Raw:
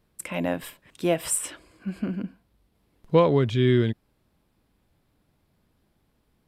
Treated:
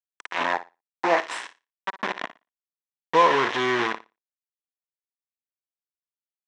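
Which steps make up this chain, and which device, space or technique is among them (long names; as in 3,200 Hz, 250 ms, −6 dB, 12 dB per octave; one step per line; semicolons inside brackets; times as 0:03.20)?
peak hold with a decay on every bin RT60 0.45 s
hand-held game console (bit reduction 4 bits; loudspeaker in its box 420–4,900 Hz, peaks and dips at 570 Hz −4 dB, 1,000 Hz +9 dB, 1,800 Hz +8 dB, 4,600 Hz −8 dB)
0:00.53–0:01.18: thirty-one-band graphic EQ 800 Hz +11 dB, 3,150 Hz −9 dB, 12,500 Hz −9 dB
flutter between parallel walls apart 10 metres, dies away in 0.24 s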